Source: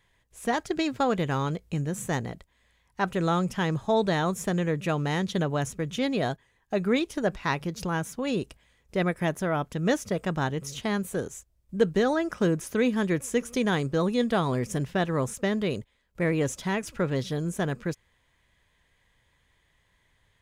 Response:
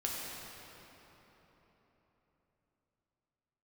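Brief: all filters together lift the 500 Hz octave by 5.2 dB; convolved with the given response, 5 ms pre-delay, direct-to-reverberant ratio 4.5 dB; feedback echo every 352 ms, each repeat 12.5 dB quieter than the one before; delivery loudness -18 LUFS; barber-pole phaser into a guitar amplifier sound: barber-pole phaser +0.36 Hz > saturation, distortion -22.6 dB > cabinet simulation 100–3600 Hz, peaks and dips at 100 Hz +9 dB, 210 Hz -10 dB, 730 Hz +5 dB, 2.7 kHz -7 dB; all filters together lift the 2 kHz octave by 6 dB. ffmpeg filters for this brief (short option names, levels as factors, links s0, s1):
-filter_complex "[0:a]equalizer=f=500:t=o:g=5,equalizer=f=2000:t=o:g=8,aecho=1:1:352|704|1056:0.237|0.0569|0.0137,asplit=2[s0][s1];[1:a]atrim=start_sample=2205,adelay=5[s2];[s1][s2]afir=irnorm=-1:irlink=0,volume=0.376[s3];[s0][s3]amix=inputs=2:normalize=0,asplit=2[s4][s5];[s5]afreqshift=0.36[s6];[s4][s6]amix=inputs=2:normalize=1,asoftclip=threshold=0.237,highpass=100,equalizer=f=100:t=q:w=4:g=9,equalizer=f=210:t=q:w=4:g=-10,equalizer=f=730:t=q:w=4:g=5,equalizer=f=2700:t=q:w=4:g=-7,lowpass=f=3600:w=0.5412,lowpass=f=3600:w=1.3066,volume=2.99"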